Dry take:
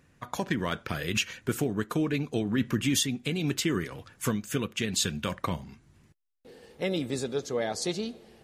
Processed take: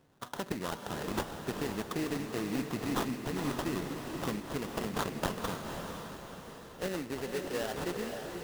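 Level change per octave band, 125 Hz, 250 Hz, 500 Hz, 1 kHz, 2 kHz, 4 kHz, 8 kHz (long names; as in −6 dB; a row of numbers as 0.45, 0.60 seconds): −7.5, −5.5, −4.0, 0.0, −5.5, −9.5, −11.0 decibels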